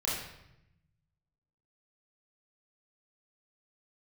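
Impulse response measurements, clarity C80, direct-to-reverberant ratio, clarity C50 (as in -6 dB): 4.5 dB, -7.0 dB, 1.0 dB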